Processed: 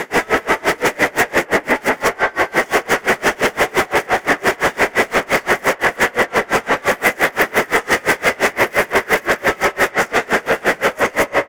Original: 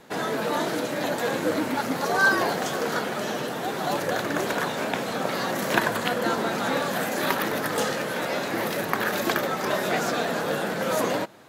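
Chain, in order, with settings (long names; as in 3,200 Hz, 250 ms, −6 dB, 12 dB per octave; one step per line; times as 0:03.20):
fade-out on the ending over 0.55 s
low-shelf EQ 330 Hz +6.5 dB
single-tap delay 233 ms −12 dB
compressor whose output falls as the input rises −27 dBFS, ratio −0.5
delay with a band-pass on its return 89 ms, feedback 82%, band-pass 870 Hz, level −7 dB
mid-hump overdrive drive 36 dB, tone 6,900 Hz, clips at −3 dBFS
brickwall limiter −10 dBFS, peak gain reduction 3.5 dB
thirty-one-band graphic EQ 400 Hz +6 dB, 2,000 Hz +11 dB, 4,000 Hz −11 dB
tremolo with a sine in dB 5.8 Hz, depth 29 dB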